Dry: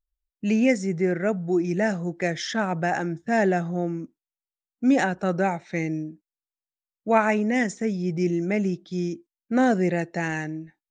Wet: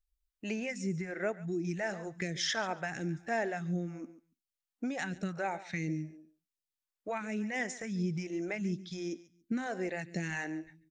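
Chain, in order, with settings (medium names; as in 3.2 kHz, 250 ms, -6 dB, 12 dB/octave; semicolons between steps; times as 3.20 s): compression 6:1, threshold -28 dBFS, peak gain reduction 14 dB; on a send: feedback delay 141 ms, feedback 16%, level -16.5 dB; on the sum: phase shifter stages 2, 1.4 Hz, lowest notch 110–1000 Hz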